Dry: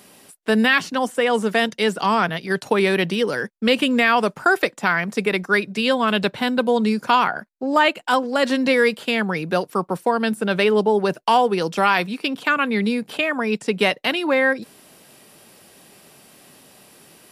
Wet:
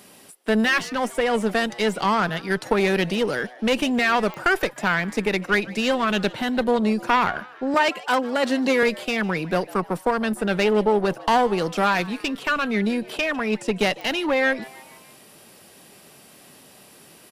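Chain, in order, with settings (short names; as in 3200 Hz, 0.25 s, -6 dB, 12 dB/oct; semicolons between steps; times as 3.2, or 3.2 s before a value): one diode to ground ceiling -19.5 dBFS; 7.74–8.83 HPF 160 Hz 24 dB/oct; frequency-shifting echo 0.151 s, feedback 56%, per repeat +130 Hz, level -21 dB; pops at 4.34/14.01, -21 dBFS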